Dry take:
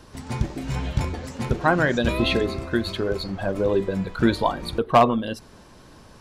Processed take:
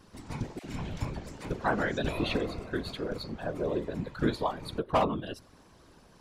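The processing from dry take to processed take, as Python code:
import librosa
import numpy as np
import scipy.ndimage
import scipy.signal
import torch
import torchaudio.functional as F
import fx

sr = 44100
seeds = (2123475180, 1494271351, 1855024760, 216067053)

y = fx.whisperise(x, sr, seeds[0])
y = fx.dispersion(y, sr, late='lows', ms=54.0, hz=710.0, at=(0.59, 1.46))
y = y * librosa.db_to_amplitude(-9.0)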